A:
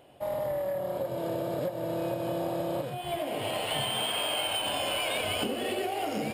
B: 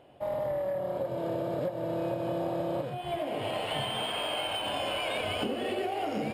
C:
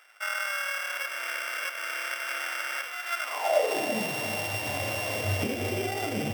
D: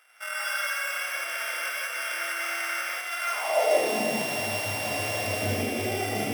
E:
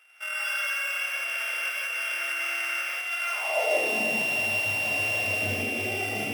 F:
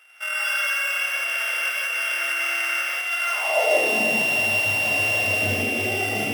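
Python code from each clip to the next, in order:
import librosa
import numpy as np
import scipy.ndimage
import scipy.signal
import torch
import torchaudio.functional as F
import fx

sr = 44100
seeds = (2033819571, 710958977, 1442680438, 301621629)

y1 = fx.lowpass(x, sr, hz=2800.0, slope=6)
y2 = np.r_[np.sort(y1[:len(y1) // 16 * 16].reshape(-1, 16), axis=1).ravel(), y1[len(y1) // 16 * 16:]]
y2 = fx.filter_sweep_highpass(y2, sr, from_hz=1400.0, to_hz=100.0, start_s=3.23, end_s=4.28, q=6.4)
y2 = y2 + 10.0 ** (-10.0 / 20.0) * np.pad(y2, (int(333 * sr / 1000.0), 0))[:len(y2)]
y3 = scipy.signal.sosfilt(scipy.signal.butter(2, 110.0, 'highpass', fs=sr, output='sos'), y2)
y3 = fx.peak_eq(y3, sr, hz=11000.0, db=8.0, octaves=0.37)
y3 = fx.rev_gated(y3, sr, seeds[0], gate_ms=210, shape='rising', drr_db=-5.5)
y3 = y3 * librosa.db_to_amplitude(-4.5)
y4 = fx.peak_eq(y3, sr, hz=2700.0, db=12.5, octaves=0.25)
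y4 = y4 * librosa.db_to_amplitude(-4.0)
y5 = fx.notch(y4, sr, hz=2400.0, q=14.0)
y5 = y5 * librosa.db_to_amplitude(5.5)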